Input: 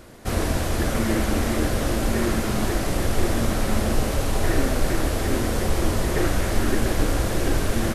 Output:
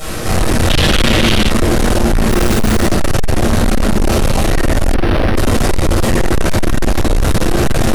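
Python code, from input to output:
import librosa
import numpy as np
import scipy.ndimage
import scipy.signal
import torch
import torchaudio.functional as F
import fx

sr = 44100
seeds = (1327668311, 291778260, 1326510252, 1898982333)

p1 = fx.delta_mod(x, sr, bps=64000, step_db=-35.0)
p2 = fx.high_shelf(p1, sr, hz=7300.0, db=4.5)
p3 = fx.quant_companded(p2, sr, bits=4, at=(2.29, 2.79))
p4 = p3 + fx.room_early_taps(p3, sr, ms=(34, 72), db=(-10.0, -7.5), dry=0)
p5 = fx.dereverb_blind(p4, sr, rt60_s=1.1)
p6 = fx.over_compress(p5, sr, threshold_db=-27.0, ratio=-1.0)
p7 = p5 + (p6 * 10.0 ** (0.0 / 20.0))
p8 = fx.room_shoebox(p7, sr, seeds[0], volume_m3=720.0, walls='mixed', distance_m=6.4)
p9 = 10.0 ** (-7.5 / 20.0) * np.tanh(p8 / 10.0 ** (-7.5 / 20.0))
p10 = fx.peak_eq(p9, sr, hz=3200.0, db=13.5, octaves=1.0, at=(0.7, 1.5))
p11 = fx.resample_linear(p10, sr, factor=6, at=(4.94, 5.36))
y = p11 * 10.0 ** (-1.0 / 20.0)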